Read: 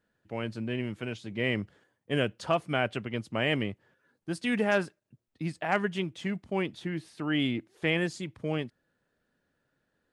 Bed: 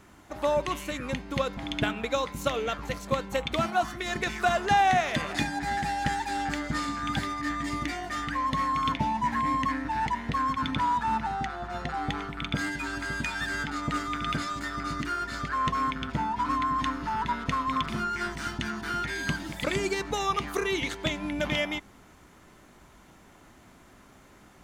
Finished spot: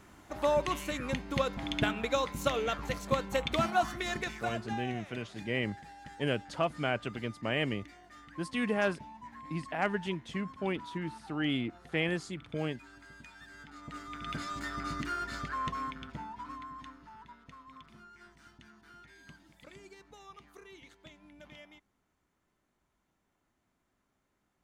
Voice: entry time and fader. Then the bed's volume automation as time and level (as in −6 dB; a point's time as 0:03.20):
4.10 s, −3.5 dB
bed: 0:04.04 −2 dB
0:04.92 −21 dB
0:13.53 −21 dB
0:14.59 −4.5 dB
0:15.32 −4.5 dB
0:17.38 −24.5 dB